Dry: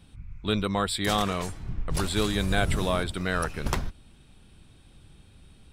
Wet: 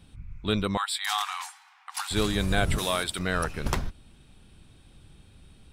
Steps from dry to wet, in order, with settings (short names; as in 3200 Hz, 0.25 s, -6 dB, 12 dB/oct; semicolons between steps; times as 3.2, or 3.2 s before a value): 0.77–2.11 brick-wall FIR high-pass 730 Hz; 2.78–3.19 tilt +3 dB/oct